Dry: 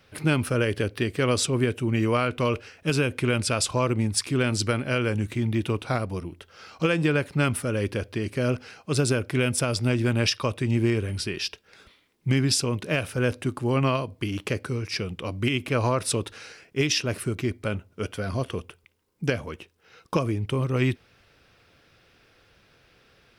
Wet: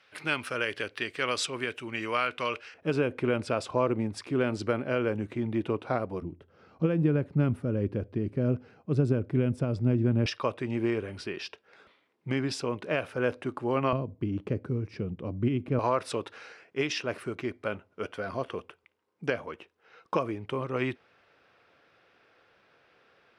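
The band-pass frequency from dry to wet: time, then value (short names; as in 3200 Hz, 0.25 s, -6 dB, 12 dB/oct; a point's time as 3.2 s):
band-pass, Q 0.61
2000 Hz
from 2.74 s 550 Hz
from 6.22 s 190 Hz
from 10.26 s 770 Hz
from 13.93 s 200 Hz
from 15.79 s 910 Hz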